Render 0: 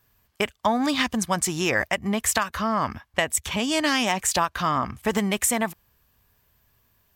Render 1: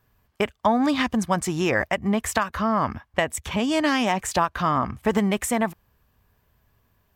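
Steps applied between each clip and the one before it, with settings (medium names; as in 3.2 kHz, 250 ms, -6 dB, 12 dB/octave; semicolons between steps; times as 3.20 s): treble shelf 2.4 kHz -10.5 dB; trim +3 dB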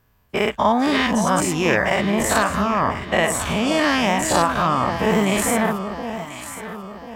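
every event in the spectrogram widened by 120 ms; echo whose repeats swap between lows and highs 520 ms, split 960 Hz, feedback 64%, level -7.5 dB; trim -1 dB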